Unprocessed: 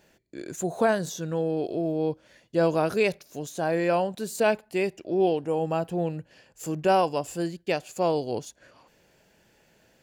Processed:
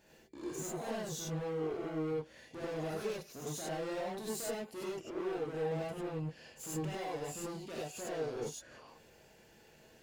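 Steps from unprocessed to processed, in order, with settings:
downward compressor 2.5 to 1, threshold −34 dBFS, peak gain reduction 11 dB
hard clipping −38 dBFS, distortion −6 dB
reverb whose tail is shaped and stops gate 120 ms rising, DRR −6 dB
level −6.5 dB

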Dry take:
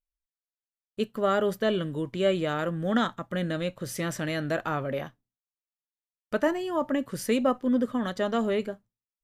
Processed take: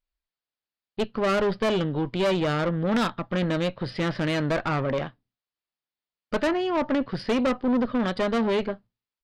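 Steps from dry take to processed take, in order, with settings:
downsampling to 11,025 Hz
tube saturation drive 28 dB, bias 0.6
level +8.5 dB

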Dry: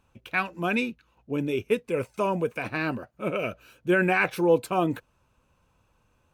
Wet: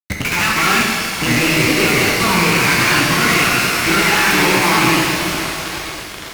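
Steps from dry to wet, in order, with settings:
loose part that buzzes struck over −40 dBFS, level −21 dBFS
graphic EQ with 15 bands 160 Hz −3 dB, 1,000 Hz +5 dB, 2,500 Hz +9 dB
downward compressor 20 to 1, threshold −34 dBFS, peak gain reduction 21.5 dB
granular cloud 205 ms, grains 17 per second, pitch spread up and down by 3 semitones
phaser with its sweep stopped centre 1,400 Hz, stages 4
feedback echo with a long and a short gap by turns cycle 931 ms, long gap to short 1.5 to 1, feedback 59%, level −18.5 dB
fuzz pedal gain 65 dB, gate −59 dBFS
reverb with rising layers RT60 2 s, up +12 semitones, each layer −8 dB, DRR −2 dB
level −3 dB

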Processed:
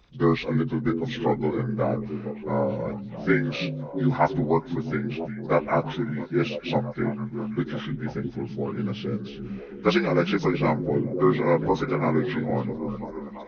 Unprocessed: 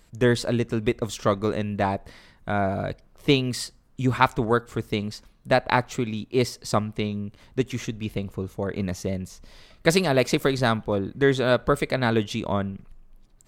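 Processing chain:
partials spread apart or drawn together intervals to 78%
echo through a band-pass that steps 333 ms, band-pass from 170 Hz, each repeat 0.7 octaves, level −4 dB

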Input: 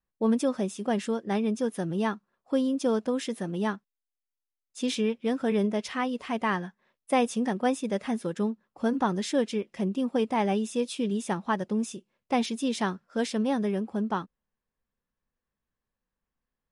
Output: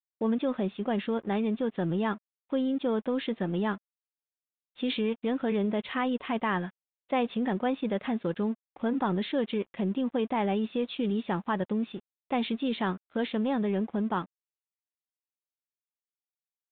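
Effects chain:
in parallel at 0 dB: compressor whose output falls as the input rises −30 dBFS, ratio −1
on the sum: dead-zone distortion −46 dBFS
downsampling to 8,000 Hz
level −5 dB

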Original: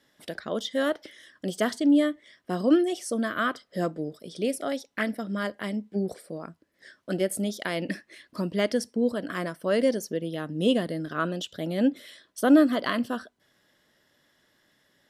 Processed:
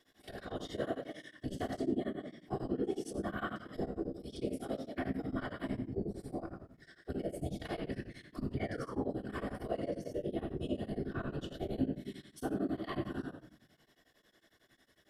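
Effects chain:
delay that plays each chunk backwards 112 ms, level −12 dB
harmonic and percussive parts rebalanced percussive −14 dB
downward compressor 5 to 1, threshold −37 dBFS, peak gain reduction 21 dB
sound drawn into the spectrogram fall, 0:08.57–0:09.12, 590–2,400 Hz −49 dBFS
random phases in short frames
convolution reverb RT60 0.65 s, pre-delay 3 ms, DRR 1 dB
tremolo along a rectified sine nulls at 11 Hz
level +1 dB

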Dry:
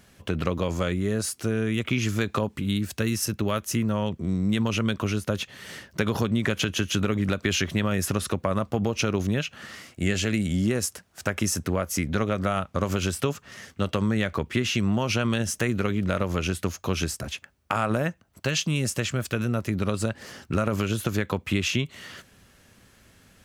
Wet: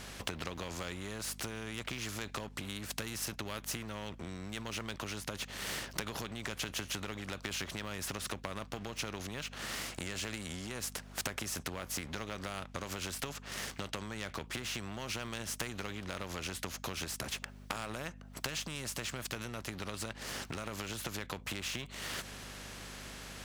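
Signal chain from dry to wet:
high-shelf EQ 8,500 Hz −10.5 dB
leveller curve on the samples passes 1
downward compressor 5 to 1, threshold −39 dBFS, peak gain reduction 19.5 dB
mains hum 50 Hz, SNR 13 dB
every bin compressed towards the loudest bin 2 to 1
level +6.5 dB

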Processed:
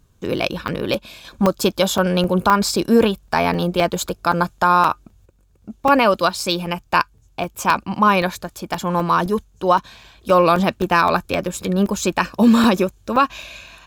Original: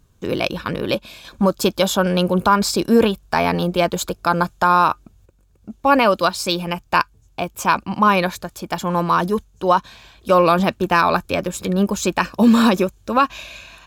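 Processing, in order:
regular buffer underruns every 0.26 s, samples 128, zero, from 0:00.42

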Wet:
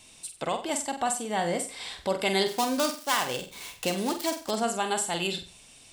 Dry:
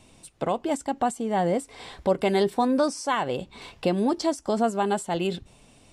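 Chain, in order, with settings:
0:02.46–0:04.51: gap after every zero crossing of 0.091 ms
tilt shelving filter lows −8 dB, about 1,400 Hz
flutter between parallel walls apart 8 metres, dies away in 0.36 s

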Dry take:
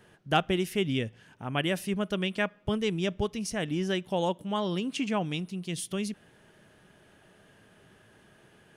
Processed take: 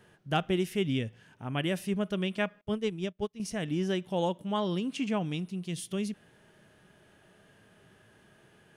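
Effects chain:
harmonic and percussive parts rebalanced percussive −5 dB
0:02.61–0:03.40: expander for the loud parts 2.5 to 1, over −45 dBFS

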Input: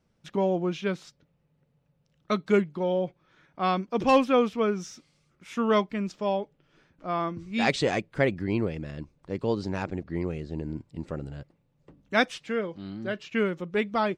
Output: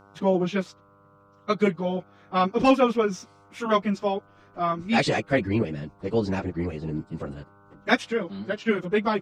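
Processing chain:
hum with harmonics 100 Hz, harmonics 15, −60 dBFS −1 dB per octave
time stretch by phase vocoder 0.65×
level +6.5 dB

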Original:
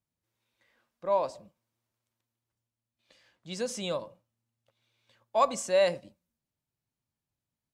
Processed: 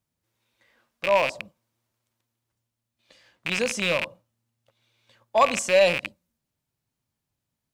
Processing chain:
loose part that buzzes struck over −52 dBFS, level −20 dBFS
in parallel at −10.5 dB: hard clipping −24.5 dBFS, distortion −9 dB
on the sum: level +4 dB

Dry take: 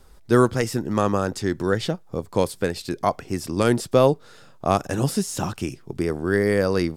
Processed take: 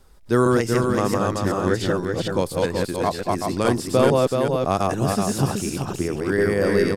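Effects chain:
delay that plays each chunk backwards 228 ms, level −1 dB
single-tap delay 379 ms −4.5 dB
level −2 dB

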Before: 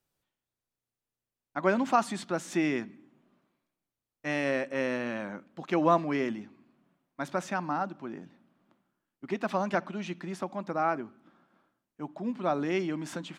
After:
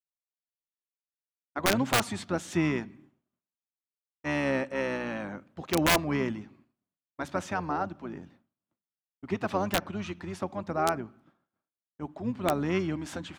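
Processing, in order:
pitch-shifted copies added −12 semitones −8 dB
wrap-around overflow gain 15 dB
downward expander −53 dBFS

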